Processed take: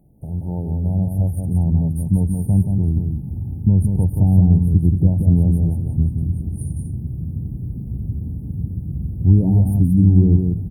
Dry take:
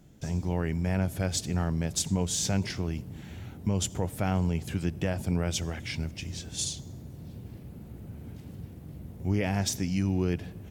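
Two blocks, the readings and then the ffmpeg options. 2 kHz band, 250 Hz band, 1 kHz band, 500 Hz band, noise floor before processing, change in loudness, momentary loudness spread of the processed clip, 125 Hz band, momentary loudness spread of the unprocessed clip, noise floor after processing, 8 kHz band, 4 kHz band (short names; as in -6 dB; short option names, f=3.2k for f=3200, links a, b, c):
under -40 dB, +12.0 dB, n/a, +1.5 dB, -46 dBFS, +11.5 dB, 13 LU, +15.5 dB, 16 LU, -30 dBFS, under -10 dB, under -40 dB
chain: -af "afftfilt=real='re*(1-between(b*sr/4096,930,8800))':imag='im*(1-between(b*sr/4096,930,8800))':win_size=4096:overlap=0.75,asubboost=boost=9:cutoff=210,aecho=1:1:178:0.562"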